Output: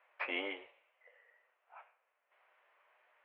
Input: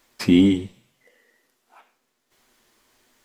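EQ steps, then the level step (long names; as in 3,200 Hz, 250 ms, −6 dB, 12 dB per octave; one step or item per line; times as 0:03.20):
elliptic band-pass filter 560–2,600 Hz, stop band 50 dB
high-frequency loss of the air 160 metres
−2.0 dB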